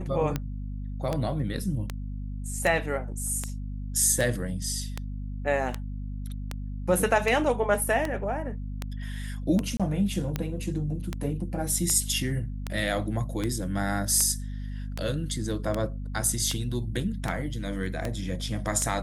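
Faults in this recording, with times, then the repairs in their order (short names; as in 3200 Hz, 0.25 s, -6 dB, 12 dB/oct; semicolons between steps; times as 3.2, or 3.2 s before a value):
hum 50 Hz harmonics 5 -34 dBFS
tick 78 rpm -14 dBFS
9.77–9.8 gap 26 ms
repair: de-click; de-hum 50 Hz, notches 5; interpolate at 9.77, 26 ms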